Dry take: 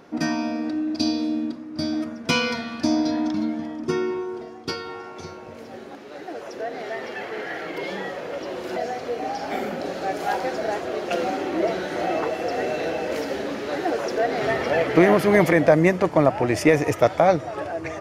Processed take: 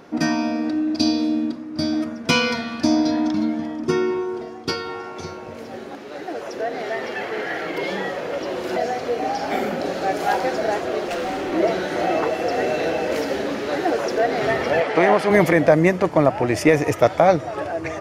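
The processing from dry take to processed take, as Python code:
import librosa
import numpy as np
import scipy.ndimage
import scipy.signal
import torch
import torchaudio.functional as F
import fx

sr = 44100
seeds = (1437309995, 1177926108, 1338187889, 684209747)

p1 = fx.rider(x, sr, range_db=4, speed_s=2.0)
p2 = x + F.gain(torch.from_numpy(p1), -3.0).numpy()
p3 = fx.clip_hard(p2, sr, threshold_db=-21.0, at=(11.07, 11.52))
p4 = fx.cabinet(p3, sr, low_hz=260.0, low_slope=12, high_hz=9400.0, hz=(330.0, 830.0, 6700.0), db=(-7, 6, -4), at=(14.8, 15.29), fade=0.02)
y = F.gain(torch.from_numpy(p4), -2.0).numpy()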